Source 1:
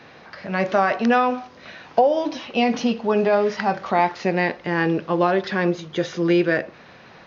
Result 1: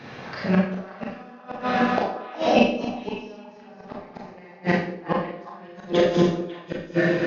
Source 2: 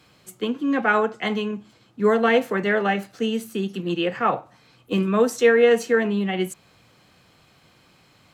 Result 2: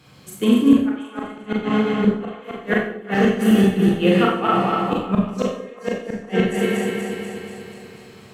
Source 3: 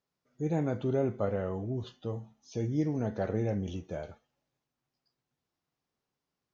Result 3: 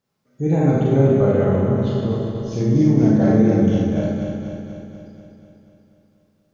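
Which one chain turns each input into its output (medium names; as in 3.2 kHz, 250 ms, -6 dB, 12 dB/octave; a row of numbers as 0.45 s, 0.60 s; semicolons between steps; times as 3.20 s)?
backward echo that repeats 121 ms, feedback 78%, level -5 dB; peaking EQ 140 Hz +7 dB 1.7 oct; inverted gate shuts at -9 dBFS, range -34 dB; repeats whose band climbs or falls 183 ms, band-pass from 380 Hz, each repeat 1.4 oct, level -9 dB; Schroeder reverb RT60 0.52 s, combs from 29 ms, DRR -2 dB; peak normalisation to -3 dBFS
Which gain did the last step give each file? +1.5 dB, +1.0 dB, +5.5 dB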